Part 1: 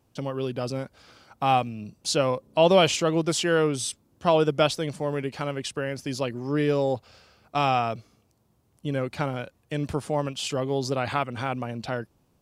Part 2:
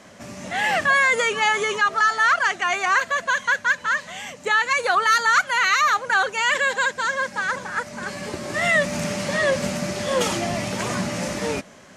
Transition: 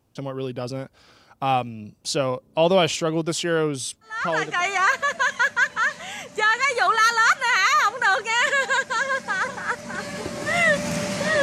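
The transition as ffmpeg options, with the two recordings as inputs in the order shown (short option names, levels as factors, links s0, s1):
-filter_complex "[0:a]apad=whole_dur=11.42,atrim=end=11.42,atrim=end=4.65,asetpts=PTS-STARTPTS[s0];[1:a]atrim=start=2.09:end=9.5,asetpts=PTS-STARTPTS[s1];[s0][s1]acrossfade=d=0.64:c1=tri:c2=tri"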